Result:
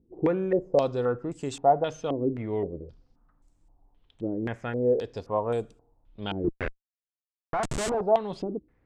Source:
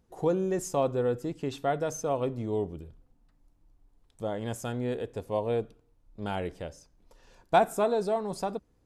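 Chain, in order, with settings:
0:06.44–0:08.01: comparator with hysteresis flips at −33.5 dBFS
low-pass on a step sequencer 3.8 Hz 330–7,900 Hz

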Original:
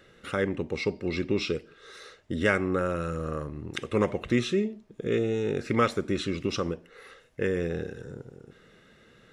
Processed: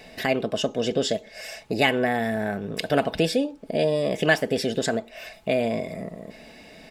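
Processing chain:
comb filter 6.2 ms, depth 38%
in parallel at +2 dB: downward compressor, threshold −43 dBFS, peak gain reduction 23.5 dB
on the sum: wrong playback speed 33 rpm record played at 45 rpm
level +2.5 dB

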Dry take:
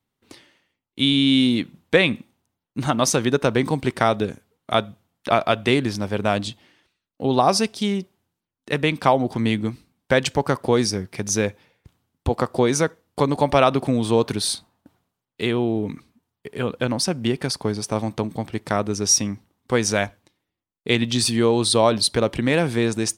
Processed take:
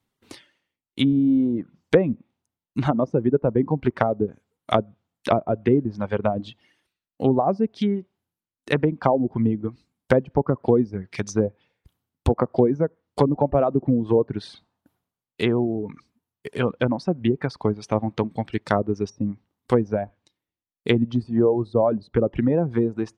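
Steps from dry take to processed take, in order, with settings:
treble cut that deepens with the level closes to 560 Hz, closed at −16.5 dBFS
reverb reduction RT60 1.9 s
level +2.5 dB

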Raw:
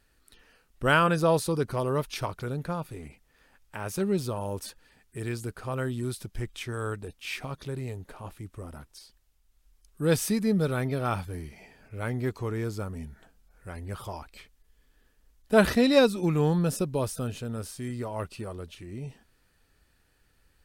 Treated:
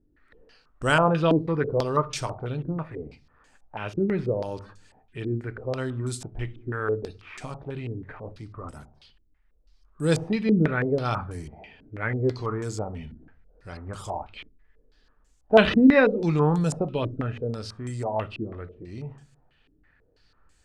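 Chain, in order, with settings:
rectangular room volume 210 cubic metres, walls furnished, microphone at 0.44 metres
low-pass on a step sequencer 6.1 Hz 310–7,400 Hz

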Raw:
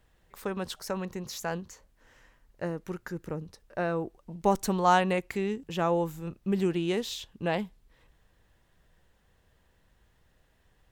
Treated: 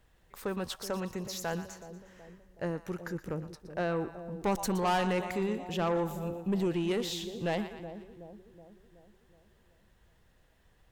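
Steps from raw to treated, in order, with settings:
echo with a time of its own for lows and highs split 710 Hz, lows 373 ms, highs 119 ms, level −13 dB
soft clipping −23.5 dBFS, distortion −10 dB

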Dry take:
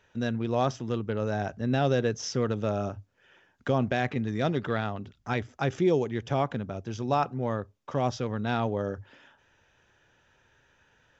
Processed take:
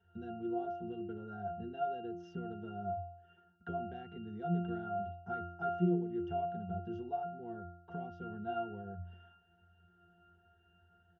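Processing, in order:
comb filter 4.4 ms, depth 42%
downward compressor 4 to 1, threshold −34 dBFS, peak gain reduction 13 dB
resonances in every octave F, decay 0.68 s
level +17 dB

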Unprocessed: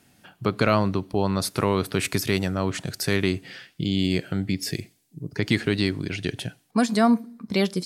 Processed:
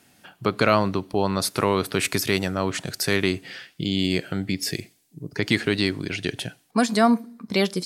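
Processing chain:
low-shelf EQ 210 Hz −7.5 dB
level +3 dB

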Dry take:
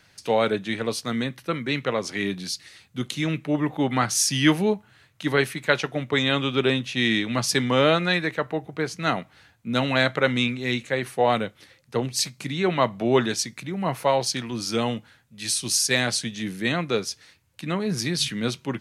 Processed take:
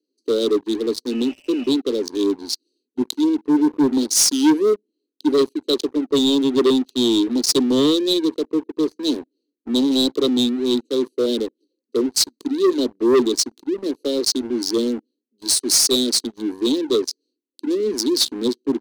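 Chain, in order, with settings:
adaptive Wiener filter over 25 samples
elliptic band-stop filter 400–3,900 Hz, stop band 40 dB
healed spectral selection 0:01.13–0:01.69, 510–3,000 Hz after
Butterworth high-pass 250 Hz 72 dB per octave
leveller curve on the samples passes 3
level +2 dB

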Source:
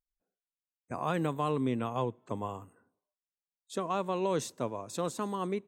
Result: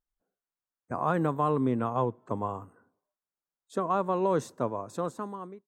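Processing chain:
fade-out on the ending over 0.88 s
high shelf with overshoot 1,900 Hz −8.5 dB, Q 1.5
level +3.5 dB

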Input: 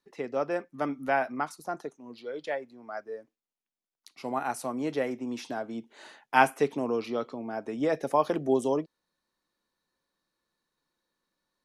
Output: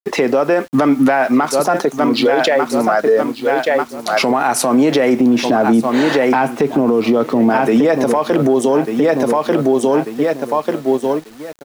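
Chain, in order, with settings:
0:05.20–0:07.50: spectral tilt −2.5 dB per octave
repeating echo 1,192 ms, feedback 28%, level −13 dB
downward compressor 10 to 1, threshold −37 dBFS, peak gain reduction 22.5 dB
leveller curve on the samples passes 1
high-pass filter 150 Hz 12 dB per octave
high-shelf EQ 7,400 Hz −6 dB
bit-depth reduction 12 bits, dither none
boost into a limiter +35 dB
level −4.5 dB

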